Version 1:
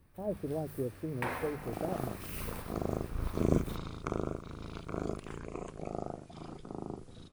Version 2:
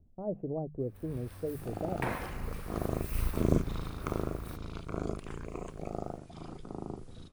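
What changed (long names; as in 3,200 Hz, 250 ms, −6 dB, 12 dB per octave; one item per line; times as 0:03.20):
first sound: entry +0.80 s
master: add low-shelf EQ 81 Hz +6.5 dB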